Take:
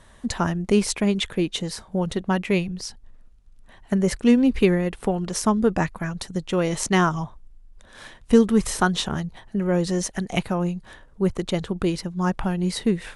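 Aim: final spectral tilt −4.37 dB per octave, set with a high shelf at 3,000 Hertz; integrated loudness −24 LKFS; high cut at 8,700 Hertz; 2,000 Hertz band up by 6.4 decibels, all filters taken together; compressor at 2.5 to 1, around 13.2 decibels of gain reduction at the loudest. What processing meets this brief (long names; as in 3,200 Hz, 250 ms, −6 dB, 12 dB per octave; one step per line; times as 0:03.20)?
low-pass filter 8,700 Hz
parametric band 2,000 Hz +7 dB
high-shelf EQ 3,000 Hz +3.5 dB
downward compressor 2.5 to 1, threshold −31 dBFS
level +7.5 dB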